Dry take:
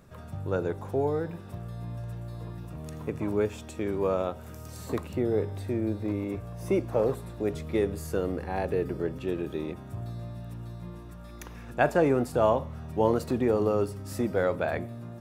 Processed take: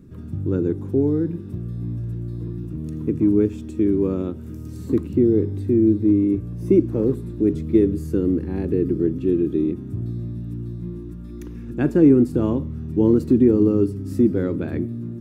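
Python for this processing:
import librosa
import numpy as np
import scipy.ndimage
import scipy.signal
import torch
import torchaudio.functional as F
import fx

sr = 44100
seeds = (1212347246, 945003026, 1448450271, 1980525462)

y = fx.low_shelf_res(x, sr, hz=460.0, db=13.0, q=3.0)
y = y * librosa.db_to_amplitude(-5.0)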